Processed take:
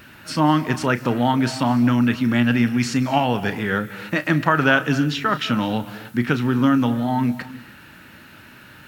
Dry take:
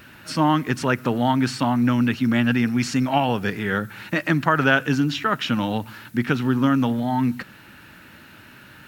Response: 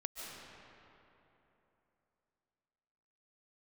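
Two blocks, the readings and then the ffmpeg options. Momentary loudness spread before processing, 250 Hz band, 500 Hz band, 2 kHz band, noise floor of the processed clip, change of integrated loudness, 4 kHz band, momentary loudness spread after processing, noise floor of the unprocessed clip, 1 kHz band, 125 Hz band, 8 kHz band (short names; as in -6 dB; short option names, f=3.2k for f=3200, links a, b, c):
8 LU, +1.5 dB, +1.5 dB, +1.5 dB, -45 dBFS, +1.5 dB, +1.5 dB, 8 LU, -47 dBFS, +1.0 dB, +1.5 dB, +1.0 dB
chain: -filter_complex "[0:a]asplit=2[a][b];[1:a]atrim=start_sample=2205,afade=t=out:st=0.34:d=0.01,atrim=end_sample=15435,adelay=33[c];[b][c]afir=irnorm=-1:irlink=0,volume=-9.5dB[d];[a][d]amix=inputs=2:normalize=0,volume=1dB"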